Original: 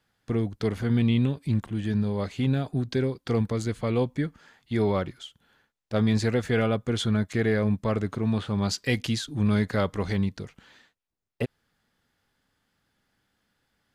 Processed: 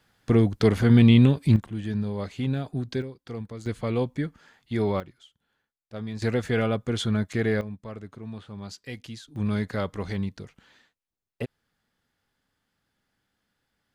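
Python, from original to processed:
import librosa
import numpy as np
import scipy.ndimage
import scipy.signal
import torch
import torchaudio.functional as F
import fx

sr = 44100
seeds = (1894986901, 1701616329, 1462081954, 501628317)

y = fx.gain(x, sr, db=fx.steps((0.0, 7.0), (1.56, -2.5), (3.02, -10.5), (3.66, -1.0), (5.0, -11.5), (6.22, -0.5), (7.61, -12.5), (9.36, -3.5)))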